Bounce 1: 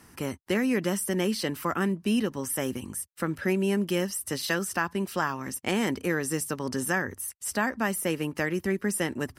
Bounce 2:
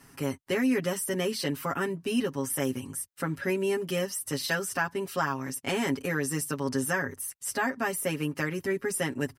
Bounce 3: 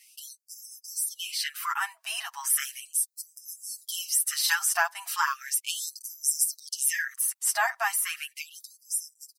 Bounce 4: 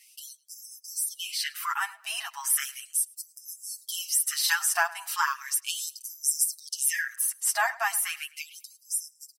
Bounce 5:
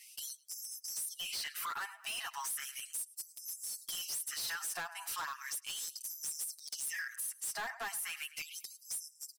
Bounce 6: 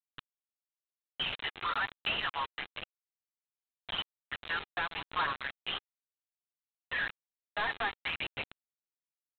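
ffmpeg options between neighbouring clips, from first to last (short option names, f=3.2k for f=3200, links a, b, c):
-af "aecho=1:1:7.3:0.95,volume=-3.5dB"
-filter_complex "[0:a]acrossover=split=5000[a][b];[b]dynaudnorm=f=420:g=11:m=6.5dB[c];[a][c]amix=inputs=2:normalize=0,afftfilt=real='re*gte(b*sr/1024,610*pow(5100/610,0.5+0.5*sin(2*PI*0.36*pts/sr)))':imag='im*gte(b*sr/1024,610*pow(5100/610,0.5+0.5*sin(2*PI*0.36*pts/sr)))':win_size=1024:overlap=0.75,volume=4dB"
-filter_complex "[0:a]asplit=2[a][b];[b]adelay=106,lowpass=f=4.3k:p=1,volume=-19.5dB,asplit=2[c][d];[d]adelay=106,lowpass=f=4.3k:p=1,volume=0.31,asplit=2[e][f];[f]adelay=106,lowpass=f=4.3k:p=1,volume=0.31[g];[a][c][e][g]amix=inputs=4:normalize=0"
-af "acompressor=threshold=-37dB:ratio=3,asoftclip=type=hard:threshold=-36.5dB,volume=1dB"
-af "aresample=8000,acrusher=bits=6:mix=0:aa=0.000001,aresample=44100,aphaser=in_gain=1:out_gain=1:delay=2.5:decay=0.26:speed=0.96:type=sinusoidal,volume=6.5dB"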